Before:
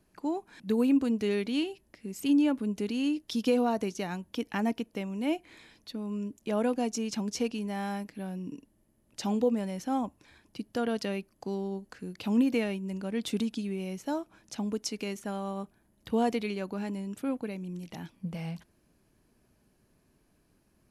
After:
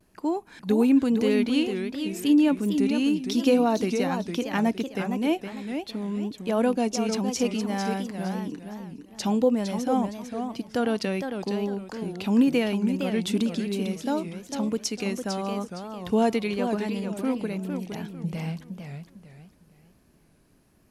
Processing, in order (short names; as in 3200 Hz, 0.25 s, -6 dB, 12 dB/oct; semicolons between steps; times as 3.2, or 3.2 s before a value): vibrato 0.97 Hz 56 cents; warbling echo 0.457 s, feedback 31%, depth 208 cents, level -7 dB; gain +5 dB